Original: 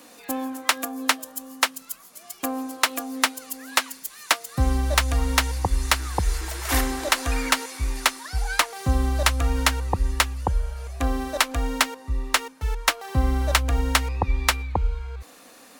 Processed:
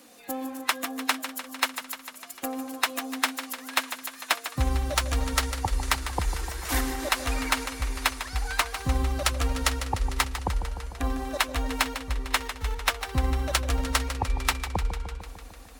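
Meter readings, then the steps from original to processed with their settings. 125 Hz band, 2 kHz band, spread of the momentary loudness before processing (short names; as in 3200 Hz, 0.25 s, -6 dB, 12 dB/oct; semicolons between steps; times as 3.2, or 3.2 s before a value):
-4.5 dB, -4.0 dB, 9 LU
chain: bin magnitudes rounded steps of 15 dB; warbling echo 0.15 s, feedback 69%, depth 52 cents, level -10.5 dB; gain -4 dB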